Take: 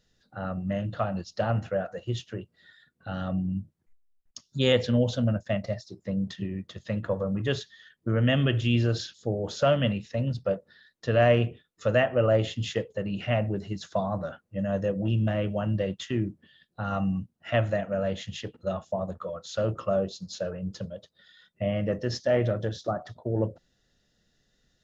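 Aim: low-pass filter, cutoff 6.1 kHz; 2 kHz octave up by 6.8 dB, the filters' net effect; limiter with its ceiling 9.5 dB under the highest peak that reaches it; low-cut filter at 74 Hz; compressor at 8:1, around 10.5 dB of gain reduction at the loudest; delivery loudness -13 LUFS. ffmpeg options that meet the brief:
-af "highpass=74,lowpass=6100,equalizer=f=2000:t=o:g=8.5,acompressor=threshold=0.0501:ratio=8,volume=12.6,alimiter=limit=0.75:level=0:latency=1"

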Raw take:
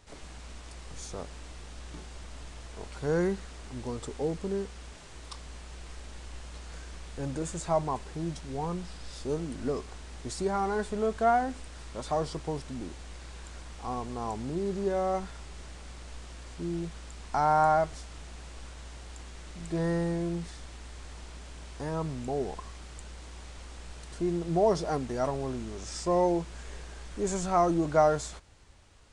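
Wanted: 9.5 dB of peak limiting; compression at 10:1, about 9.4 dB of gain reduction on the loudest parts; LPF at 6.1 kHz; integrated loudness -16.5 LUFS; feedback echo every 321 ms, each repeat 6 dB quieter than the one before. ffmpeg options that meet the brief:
-af "lowpass=6100,acompressor=threshold=0.0398:ratio=10,alimiter=level_in=1.41:limit=0.0631:level=0:latency=1,volume=0.708,aecho=1:1:321|642|963|1284|1605|1926:0.501|0.251|0.125|0.0626|0.0313|0.0157,volume=11.9"

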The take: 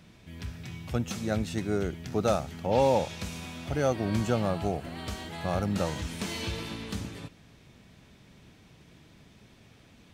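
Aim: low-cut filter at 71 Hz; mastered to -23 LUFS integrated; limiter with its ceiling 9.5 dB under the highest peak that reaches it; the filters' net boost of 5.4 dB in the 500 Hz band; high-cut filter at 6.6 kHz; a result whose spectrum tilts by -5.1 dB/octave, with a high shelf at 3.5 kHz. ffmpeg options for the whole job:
-af "highpass=71,lowpass=6600,equalizer=f=500:t=o:g=6,highshelf=f=3500:g=8.5,volume=2.51,alimiter=limit=0.316:level=0:latency=1"

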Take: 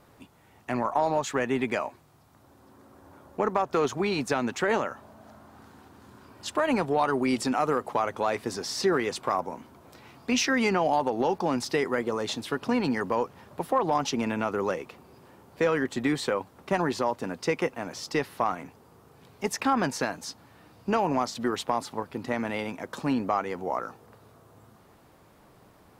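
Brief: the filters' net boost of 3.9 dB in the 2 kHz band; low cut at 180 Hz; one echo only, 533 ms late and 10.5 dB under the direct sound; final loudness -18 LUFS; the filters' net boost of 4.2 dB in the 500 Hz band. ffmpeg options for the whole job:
-af "highpass=180,equalizer=f=500:t=o:g=5,equalizer=f=2000:t=o:g=4.5,aecho=1:1:533:0.299,volume=2.37"

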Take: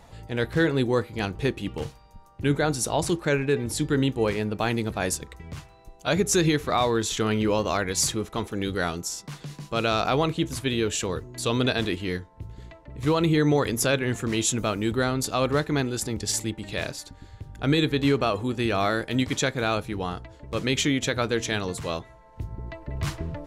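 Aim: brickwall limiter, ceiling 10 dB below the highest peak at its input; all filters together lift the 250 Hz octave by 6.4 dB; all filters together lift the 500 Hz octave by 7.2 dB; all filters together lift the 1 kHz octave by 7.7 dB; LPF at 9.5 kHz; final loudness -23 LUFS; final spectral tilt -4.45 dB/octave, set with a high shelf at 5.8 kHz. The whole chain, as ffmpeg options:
-af "lowpass=9500,equalizer=f=250:t=o:g=6,equalizer=f=500:t=o:g=5,equalizer=f=1000:t=o:g=8,highshelf=f=5800:g=8.5,volume=1.19,alimiter=limit=0.237:level=0:latency=1"

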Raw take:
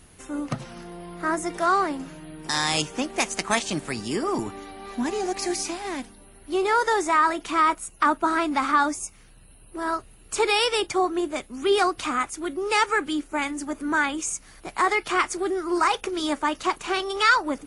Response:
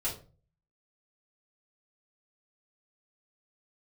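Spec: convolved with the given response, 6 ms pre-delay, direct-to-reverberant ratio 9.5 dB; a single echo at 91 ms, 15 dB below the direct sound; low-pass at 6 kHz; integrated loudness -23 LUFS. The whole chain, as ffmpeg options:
-filter_complex "[0:a]lowpass=6000,aecho=1:1:91:0.178,asplit=2[s0][s1];[1:a]atrim=start_sample=2205,adelay=6[s2];[s1][s2]afir=irnorm=-1:irlink=0,volume=0.2[s3];[s0][s3]amix=inputs=2:normalize=0,volume=1.12"

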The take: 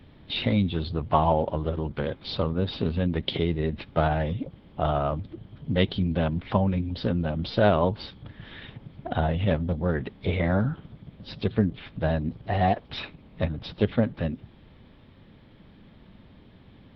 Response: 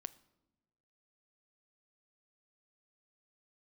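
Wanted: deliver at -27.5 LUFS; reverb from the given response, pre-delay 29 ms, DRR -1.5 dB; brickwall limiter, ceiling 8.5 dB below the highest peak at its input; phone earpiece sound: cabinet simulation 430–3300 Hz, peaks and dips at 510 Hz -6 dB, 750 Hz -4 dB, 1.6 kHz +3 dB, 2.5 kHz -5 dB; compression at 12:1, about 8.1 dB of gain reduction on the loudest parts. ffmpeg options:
-filter_complex "[0:a]acompressor=threshold=0.0631:ratio=12,alimiter=limit=0.1:level=0:latency=1,asplit=2[s0][s1];[1:a]atrim=start_sample=2205,adelay=29[s2];[s1][s2]afir=irnorm=-1:irlink=0,volume=1.88[s3];[s0][s3]amix=inputs=2:normalize=0,highpass=430,equalizer=f=510:t=q:w=4:g=-6,equalizer=f=750:t=q:w=4:g=-4,equalizer=f=1600:t=q:w=4:g=3,equalizer=f=2500:t=q:w=4:g=-5,lowpass=f=3300:w=0.5412,lowpass=f=3300:w=1.3066,volume=2.99"

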